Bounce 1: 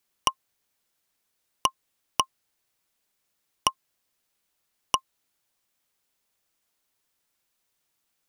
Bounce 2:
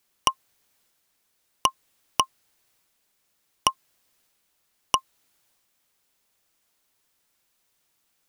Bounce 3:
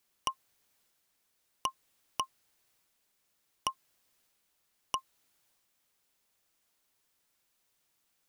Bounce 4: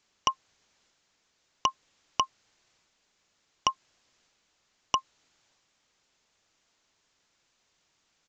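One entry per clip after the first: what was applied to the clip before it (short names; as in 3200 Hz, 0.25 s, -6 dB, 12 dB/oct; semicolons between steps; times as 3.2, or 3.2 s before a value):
transient shaper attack -3 dB, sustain +3 dB; gain +5 dB
limiter -9.5 dBFS, peak gain reduction 8 dB; gain -4.5 dB
downsampling 16000 Hz; gain +7.5 dB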